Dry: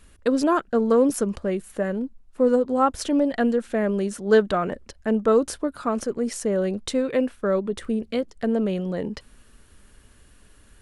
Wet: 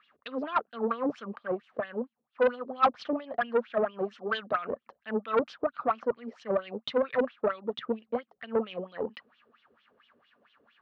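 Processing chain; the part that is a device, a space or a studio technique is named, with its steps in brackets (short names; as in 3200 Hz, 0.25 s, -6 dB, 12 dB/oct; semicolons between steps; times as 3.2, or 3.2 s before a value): wah-wah guitar rig (wah 4.4 Hz 420–3400 Hz, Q 5.4; tube stage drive 25 dB, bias 0.4; speaker cabinet 100–4500 Hz, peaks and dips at 140 Hz +6 dB, 230 Hz +9 dB, 370 Hz -3 dB, 740 Hz +4 dB, 1200 Hz +7 dB); gain +6 dB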